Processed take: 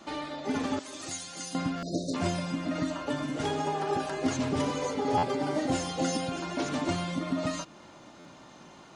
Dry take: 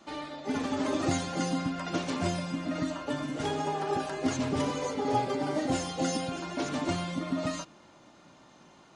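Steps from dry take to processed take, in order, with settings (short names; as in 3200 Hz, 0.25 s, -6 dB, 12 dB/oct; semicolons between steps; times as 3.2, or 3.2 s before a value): 0.79–1.55 pre-emphasis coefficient 0.9; 1.79–2.14 spectral delete 700–3600 Hz; in parallel at +0.5 dB: compressor, threshold -42 dBFS, peak gain reduction 17.5 dB; on the sum: stuck buffer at 1.77/5.17/8.19, samples 512, times 4; gain -1 dB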